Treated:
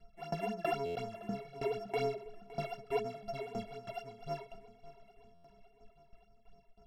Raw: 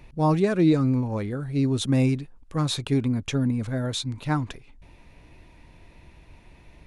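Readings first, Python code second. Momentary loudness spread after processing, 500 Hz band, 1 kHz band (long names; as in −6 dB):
12 LU, −8.0 dB, −7.0 dB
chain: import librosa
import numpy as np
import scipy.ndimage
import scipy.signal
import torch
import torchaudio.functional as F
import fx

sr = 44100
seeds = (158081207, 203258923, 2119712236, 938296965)

y = np.r_[np.sort(x[:len(x) // 64 * 64].reshape(-1, 64), axis=1).ravel(), x[len(x) // 64 * 64:]]
y = scipy.signal.sosfilt(scipy.signal.butter(2, 7800.0, 'lowpass', fs=sr, output='sos'), y)
y = fx.stiff_resonator(y, sr, f0_hz=200.0, decay_s=0.34, stiffness=0.03)
y = fx.tremolo_shape(y, sr, shape='saw_down', hz=3.1, depth_pct=95)
y = fx.phaser_stages(y, sr, stages=8, low_hz=160.0, high_hz=3600.0, hz=4.0, feedback_pct=45)
y = fx.high_shelf(y, sr, hz=3400.0, db=-8.0)
y = fx.echo_feedback(y, sr, ms=563, feedback_pct=59, wet_db=-18.0)
y = fx.buffer_glitch(y, sr, at_s=(0.85, 5.34), block=512, repeats=8)
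y = y * 10.0 ** (5.0 / 20.0)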